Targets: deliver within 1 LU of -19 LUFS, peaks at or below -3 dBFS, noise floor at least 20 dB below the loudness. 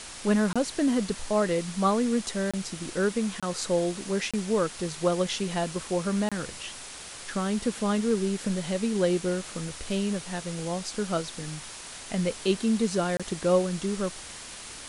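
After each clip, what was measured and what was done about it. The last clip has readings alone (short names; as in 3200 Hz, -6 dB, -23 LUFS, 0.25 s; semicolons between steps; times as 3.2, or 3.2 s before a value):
dropouts 6; longest dropout 26 ms; noise floor -42 dBFS; noise floor target -48 dBFS; loudness -28.0 LUFS; peak -11.0 dBFS; loudness target -19.0 LUFS
-> interpolate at 0.53/2.51/3.4/4.31/6.29/13.17, 26 ms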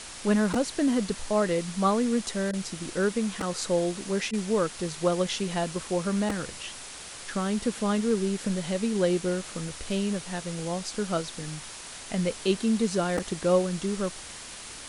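dropouts 0; noise floor -42 dBFS; noise floor target -48 dBFS
-> denoiser 6 dB, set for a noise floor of -42 dBFS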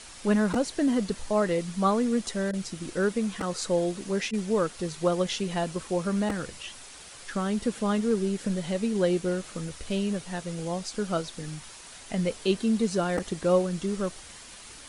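noise floor -46 dBFS; noise floor target -49 dBFS
-> denoiser 6 dB, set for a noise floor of -46 dBFS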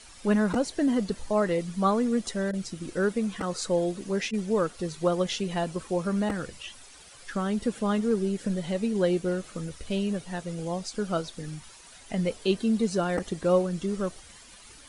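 noise floor -50 dBFS; loudness -28.5 LUFS; peak -11.0 dBFS; loudness target -19.0 LUFS
-> gain +9.5 dB; limiter -3 dBFS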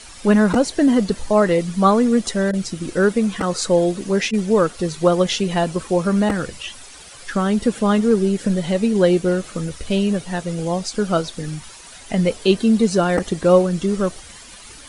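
loudness -19.0 LUFS; peak -3.0 dBFS; noise floor -41 dBFS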